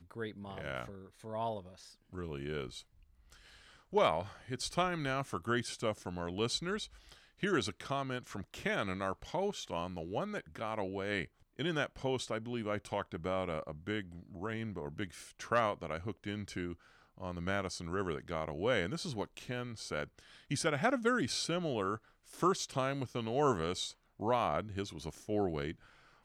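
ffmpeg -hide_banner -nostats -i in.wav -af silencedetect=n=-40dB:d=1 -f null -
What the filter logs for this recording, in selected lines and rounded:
silence_start: 2.79
silence_end: 3.93 | silence_duration: 1.14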